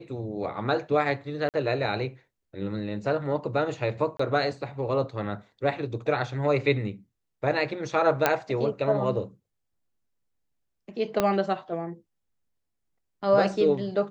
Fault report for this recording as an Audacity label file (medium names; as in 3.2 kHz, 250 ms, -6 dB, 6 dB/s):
1.490000	1.540000	dropout 48 ms
4.170000	4.190000	dropout 24 ms
8.260000	8.260000	pop -6 dBFS
11.200000	11.200000	pop -9 dBFS